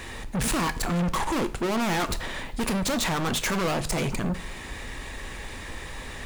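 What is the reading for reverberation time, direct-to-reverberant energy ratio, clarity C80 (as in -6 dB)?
0.50 s, 11.0 dB, 20.5 dB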